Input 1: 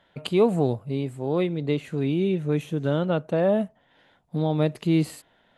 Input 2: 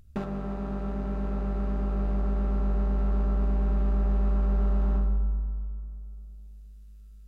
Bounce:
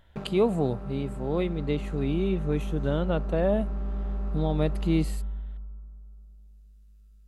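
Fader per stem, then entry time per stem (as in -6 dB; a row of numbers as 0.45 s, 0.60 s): -3.5 dB, -6.0 dB; 0.00 s, 0.00 s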